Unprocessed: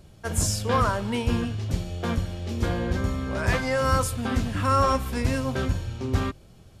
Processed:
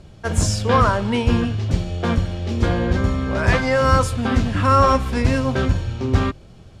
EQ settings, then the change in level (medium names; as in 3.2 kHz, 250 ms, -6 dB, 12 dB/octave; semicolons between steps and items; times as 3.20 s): distance through air 63 m; +7.0 dB